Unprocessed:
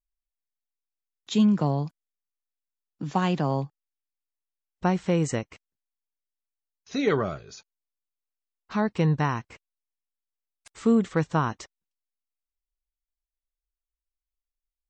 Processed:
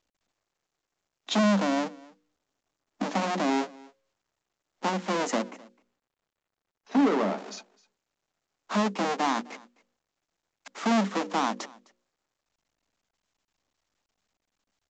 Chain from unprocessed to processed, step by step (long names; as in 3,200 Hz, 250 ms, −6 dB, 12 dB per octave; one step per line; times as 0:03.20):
each half-wave held at its own peak
0:01.84–0:03.02: low-shelf EQ 320 Hz +10 dB
0:05.42–0:07.38: low-pass filter 1,500 Hz 6 dB per octave
mains-hum notches 60/120/180/240/300/360/420/480/540 Hz
in parallel at +2.5 dB: downward compressor, threshold −26 dBFS, peak gain reduction 11.5 dB
on the sum: brickwall limiter −14 dBFS, peak gain reduction 7.5 dB
Chebyshev high-pass with heavy ripple 190 Hz, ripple 6 dB
soft clipping −12 dBFS, distortion −25 dB
on a send: single-tap delay 258 ms −23.5 dB
on the sum: mu-law 128 kbit/s 16,000 Hz